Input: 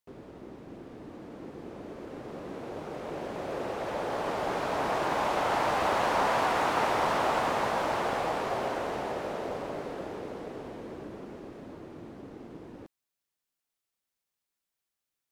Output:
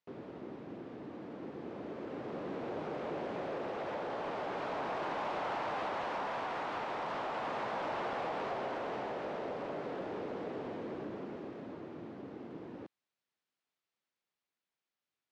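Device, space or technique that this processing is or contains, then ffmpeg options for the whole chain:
AM radio: -af "highpass=120,lowpass=4000,acompressor=threshold=-33dB:ratio=6,asoftclip=type=tanh:threshold=-30dB,tremolo=f=0.37:d=0.18,volume=1dB"

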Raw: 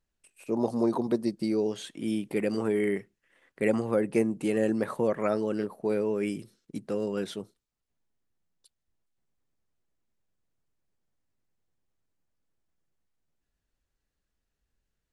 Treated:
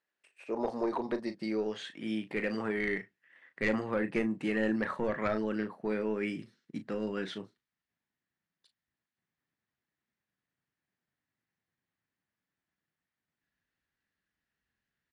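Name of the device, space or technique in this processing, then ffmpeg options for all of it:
intercom: -filter_complex "[0:a]highpass=380,lowpass=4100,equalizer=frequency=1800:width_type=o:width=0.48:gain=8,asoftclip=type=tanh:threshold=-18.5dB,asplit=2[link_01][link_02];[link_02]adelay=37,volume=-10.5dB[link_03];[link_01][link_03]amix=inputs=2:normalize=0,asubboost=boost=11:cutoff=140"

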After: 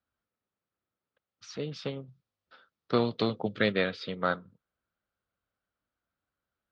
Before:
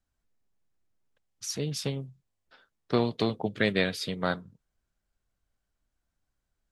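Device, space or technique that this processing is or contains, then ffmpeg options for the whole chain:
guitar cabinet: -filter_complex "[0:a]highpass=97,equalizer=frequency=140:width_type=q:width=4:gain=-4,equalizer=frequency=520:width_type=q:width=4:gain=5,equalizer=frequency=1300:width_type=q:width=4:gain=9,lowpass=frequency=4300:width=0.5412,lowpass=frequency=4300:width=1.3066,asettb=1/sr,asplit=3[link_01][link_02][link_03];[link_01]atrim=end=2.084[link_04];[link_02]atrim=start=2.08:end=3.72,asetpts=PTS-STARTPTS,afade=type=in:duration=0.004:curve=qsin,afade=type=out:start_time=1.636:duration=0.004:curve=qsin,bass=frequency=250:gain=4,treble=frequency=4000:gain=10[link_05];[link_03]atrim=start=3.716[link_06];[link_04][link_05]acrossfade=duration=0.004:curve1=hsin:curve2=qsin[link_07];[link_07][link_06]acrossfade=duration=0.004:curve1=qsin:curve2=hsin,volume=-3dB"

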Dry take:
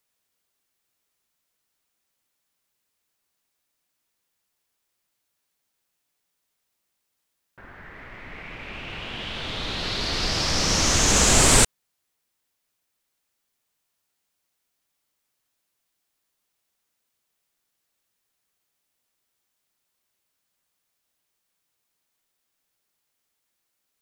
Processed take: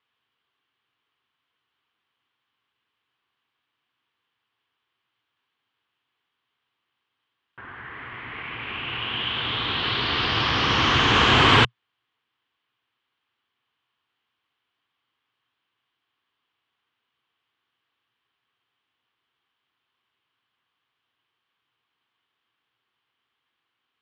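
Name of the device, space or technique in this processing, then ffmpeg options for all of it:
guitar cabinet: -af "highpass=95,equalizer=frequency=120:width_type=q:width=4:gain=5,equalizer=frequency=180:width_type=q:width=4:gain=-9,equalizer=frequency=590:width_type=q:width=4:gain=-9,equalizer=frequency=1100:width_type=q:width=4:gain=7,equalizer=frequency=1600:width_type=q:width=4:gain=3,equalizer=frequency=3100:width_type=q:width=4:gain=8,lowpass=frequency=3400:width=0.5412,lowpass=frequency=3400:width=1.3066,volume=3dB"

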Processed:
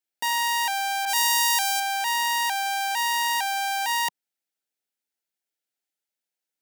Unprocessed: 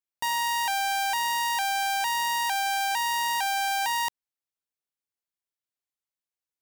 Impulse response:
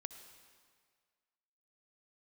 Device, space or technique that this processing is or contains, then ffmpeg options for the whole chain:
PA system with an anti-feedback notch: -filter_complex "[0:a]highpass=frequency=180:width=0.5412,highpass=frequency=180:width=1.3066,asuperstop=centerf=1100:order=4:qfactor=3.6,alimiter=limit=-23dB:level=0:latency=1,asettb=1/sr,asplit=3[link_01][link_02][link_03];[link_01]atrim=end=1.054[link_04];[link_02]atrim=start=1.05:end=1.8,asetpts=PTS-STARTPTS,afade=type=in:duration=0.004:curve=qsin,afade=type=out:start_time=0.746:duration=0.004:curve=qsin,adynamicequalizer=threshold=0.00631:dfrequency=3600:dqfactor=0.7:tfrequency=3600:tqfactor=0.7:attack=5:release=100:ratio=0.375:range=4:mode=boostabove:tftype=highshelf[link_05];[link_03]atrim=start=1.796[link_06];[link_04][link_05]acrossfade=duration=0.004:curve1=hsin:curve2=qsin[link_07];[link_07][link_06]acrossfade=duration=0.004:curve1=qsin:curve2=hsin,volume=4.5dB"

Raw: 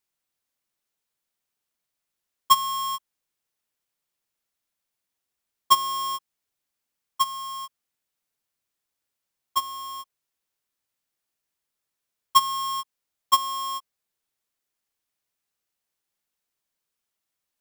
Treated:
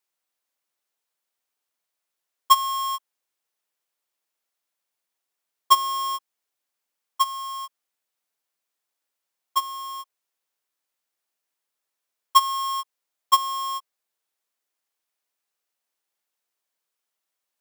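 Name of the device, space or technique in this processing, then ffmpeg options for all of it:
filter by subtraction: -filter_complex "[0:a]asplit=2[link_01][link_02];[link_02]lowpass=640,volume=-1[link_03];[link_01][link_03]amix=inputs=2:normalize=0"

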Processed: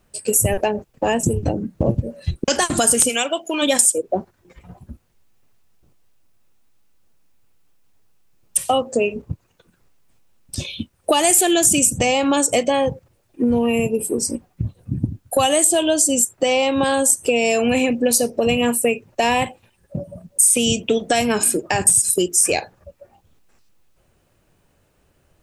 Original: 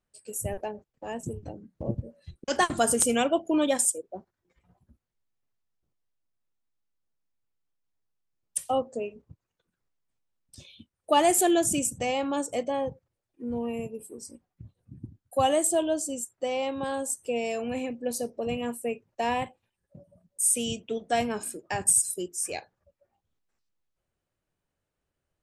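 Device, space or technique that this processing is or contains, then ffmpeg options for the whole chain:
mastering chain: -filter_complex "[0:a]equalizer=frequency=2600:width_type=o:width=0.25:gain=3.5,acrossover=split=1600|4900[link_01][link_02][link_03];[link_01]acompressor=threshold=-38dB:ratio=4[link_04];[link_02]acompressor=threshold=-40dB:ratio=4[link_05];[link_03]acompressor=threshold=-29dB:ratio=4[link_06];[link_04][link_05][link_06]amix=inputs=3:normalize=0,acompressor=threshold=-36dB:ratio=2,tiltshelf=frequency=1500:gain=3.5,alimiter=level_in=25dB:limit=-1dB:release=50:level=0:latency=1,asplit=3[link_07][link_08][link_09];[link_07]afade=type=out:start_time=3.08:duration=0.02[link_10];[link_08]highpass=frequency=830:poles=1,afade=type=in:start_time=3.08:duration=0.02,afade=type=out:start_time=3.61:duration=0.02[link_11];[link_09]afade=type=in:start_time=3.61:duration=0.02[link_12];[link_10][link_11][link_12]amix=inputs=3:normalize=0,highshelf=frequency=3800:gain=5.5,volume=-5.5dB"

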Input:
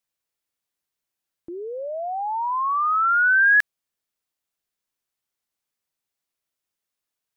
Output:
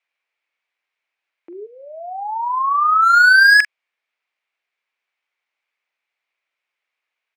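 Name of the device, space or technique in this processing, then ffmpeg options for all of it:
megaphone: -filter_complex "[0:a]highpass=590,lowpass=2900,equalizer=frequency=2300:width_type=o:width=0.51:gain=11,asoftclip=type=hard:threshold=-16dB,asplit=2[link_01][link_02];[link_02]adelay=44,volume=-12.5dB[link_03];[link_01][link_03]amix=inputs=2:normalize=0,asplit=3[link_04][link_05][link_06];[link_04]afade=type=out:start_time=1.65:duration=0.02[link_07];[link_05]highpass=1100,afade=type=in:start_time=1.65:duration=0.02,afade=type=out:start_time=3.12:duration=0.02[link_08];[link_06]afade=type=in:start_time=3.12:duration=0.02[link_09];[link_07][link_08][link_09]amix=inputs=3:normalize=0,volume=7.5dB"

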